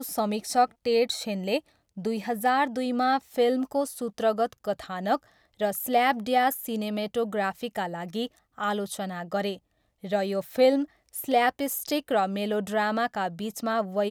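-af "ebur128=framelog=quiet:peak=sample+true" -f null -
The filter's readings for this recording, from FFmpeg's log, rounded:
Integrated loudness:
  I:         -27.3 LUFS
  Threshold: -37.4 LUFS
Loudness range:
  LRA:         4.5 LU
  Threshold: -47.5 LUFS
  LRA low:   -30.7 LUFS
  LRA high:  -26.2 LUFS
Sample peak:
  Peak:      -10.8 dBFS
True peak:
  Peak:      -10.8 dBFS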